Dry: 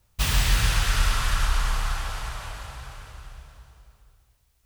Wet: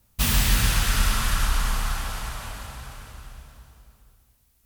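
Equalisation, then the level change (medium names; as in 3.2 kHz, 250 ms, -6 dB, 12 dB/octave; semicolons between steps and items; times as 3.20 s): peaking EQ 230 Hz +10.5 dB 0.64 oct; peaking EQ 14 kHz +9 dB 0.98 oct; 0.0 dB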